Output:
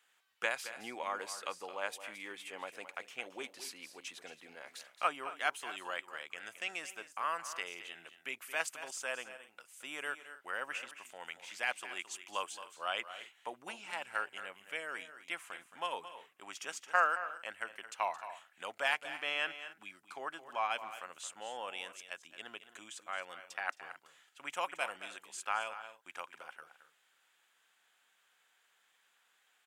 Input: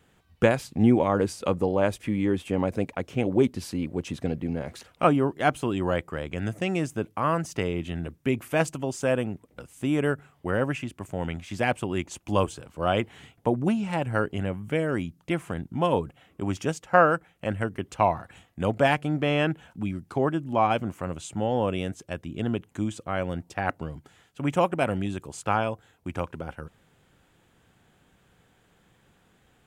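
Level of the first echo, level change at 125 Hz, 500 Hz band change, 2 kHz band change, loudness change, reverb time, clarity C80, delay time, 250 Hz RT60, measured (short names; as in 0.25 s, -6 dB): -12.5 dB, under -40 dB, -19.0 dB, -5.0 dB, -12.5 dB, none, none, 0.22 s, none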